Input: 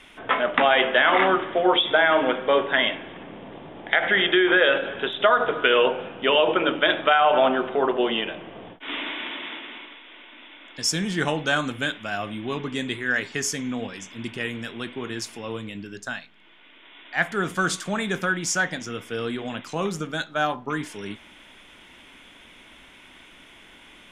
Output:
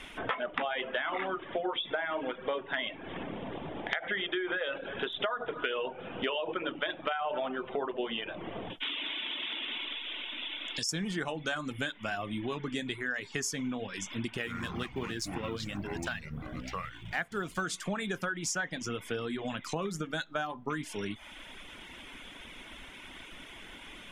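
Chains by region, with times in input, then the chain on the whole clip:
8.7–10.89 band shelf 5500 Hz +10.5 dB 2.4 oct + compressor 4:1, threshold -31 dBFS
14.37–17.62 G.711 law mismatch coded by A + echoes that change speed 94 ms, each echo -5 st, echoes 3, each echo -6 dB
whole clip: compressor 5:1, threshold -34 dBFS; reverb removal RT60 0.62 s; low shelf 63 Hz +6.5 dB; gain +2.5 dB

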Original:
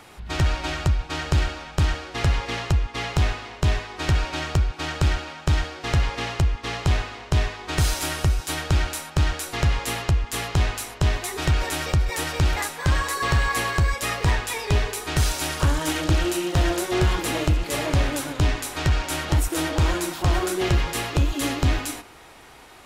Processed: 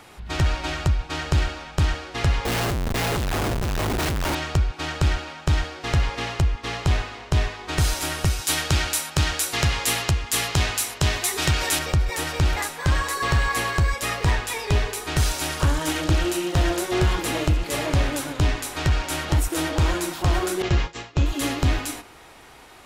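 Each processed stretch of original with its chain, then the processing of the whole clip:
2.45–4.35 bell 1400 Hz -6 dB 2.5 oct + Schmitt trigger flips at -38.5 dBFS
8.25–11.79 HPF 60 Hz + high shelf 2100 Hz +8.5 dB
20.62–21.26 expander -21 dBFS + steep low-pass 7600 Hz 96 dB/oct
whole clip: dry

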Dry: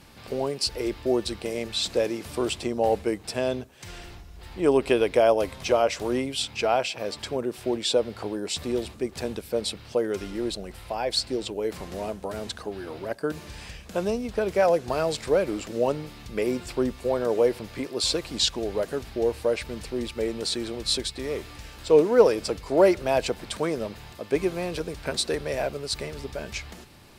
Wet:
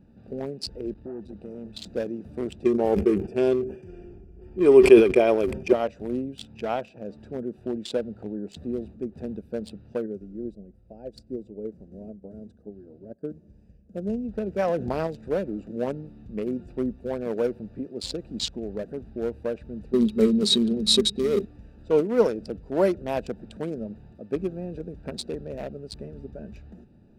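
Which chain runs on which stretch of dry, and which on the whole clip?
0.93–1.74 compressor 2:1, threshold -28 dBFS + core saturation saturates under 850 Hz
2.64–5.73 Butterworth band-stop 3900 Hz, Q 5.2 + small resonant body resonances 380/2400 Hz, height 17 dB, ringing for 80 ms + sustainer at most 93 dB/s
10.06–14.1 band shelf 1800 Hz -8.5 dB 2.7 oct + upward expander, over -42 dBFS
14.64–15.07 high shelf 4500 Hz -6 dB + fast leveller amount 50%
19.93–21.45 high shelf 2100 Hz +8 dB + small resonant body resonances 210/400/3800 Hz, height 17 dB, ringing for 70 ms
whole clip: Wiener smoothing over 41 samples; bell 210 Hz +8.5 dB 0.56 oct; gain -3.5 dB

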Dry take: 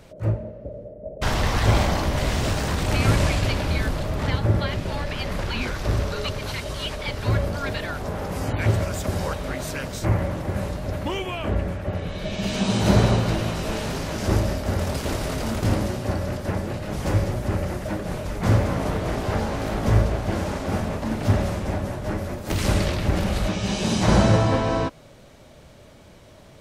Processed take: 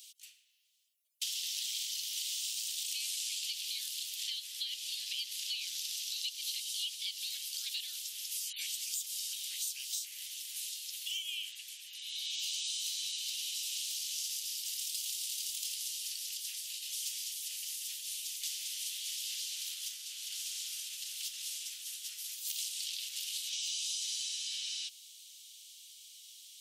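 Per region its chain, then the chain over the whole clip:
19.54–23.53 bell 1300 Hz +10.5 dB 0.51 oct + compressor 2.5:1, threshold -24 dBFS
whole clip: elliptic high-pass 3000 Hz, stop band 70 dB; tilt +3 dB/oct; compressor, threshold -35 dBFS

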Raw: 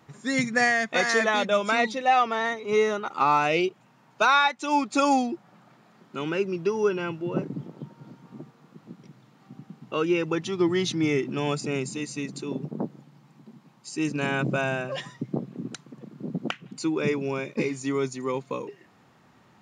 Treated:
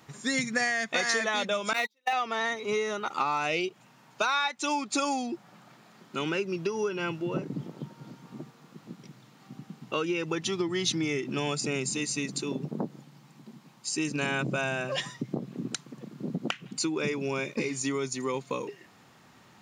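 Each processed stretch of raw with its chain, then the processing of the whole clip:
1.73–2.13 median filter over 5 samples + HPF 770 Hz 6 dB/oct + gate -28 dBFS, range -40 dB
whole clip: compressor, threshold -27 dBFS; high shelf 2400 Hz +8.5 dB

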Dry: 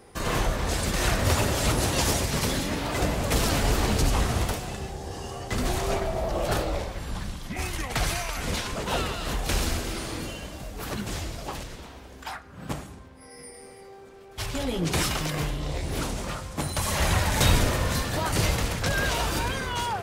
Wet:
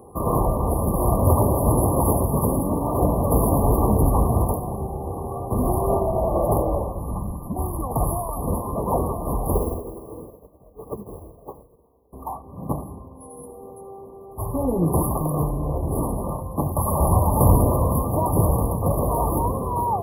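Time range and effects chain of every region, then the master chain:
9.55–12.13 bell 450 Hz +11 dB 0.52 oct + careless resampling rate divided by 3×, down none, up hold + upward expander 2.5:1, over -39 dBFS
whole clip: FFT band-reject 1200–10000 Hz; HPF 47 Hz; gain +7 dB

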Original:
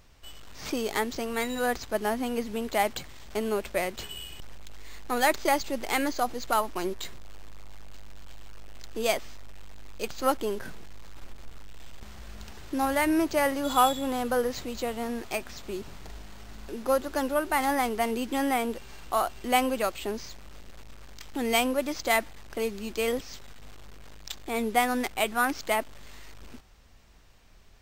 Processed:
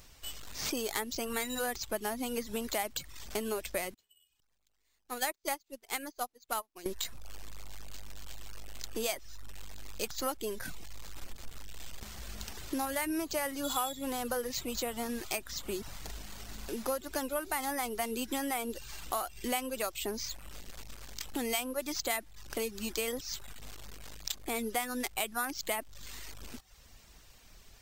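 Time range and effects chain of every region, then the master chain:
3.94–6.86 low shelf 91 Hz -7.5 dB + upward expander 2.5:1, over -41 dBFS
whole clip: reverb removal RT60 0.55 s; high shelf 3900 Hz +11 dB; compressor 4:1, threshold -32 dBFS

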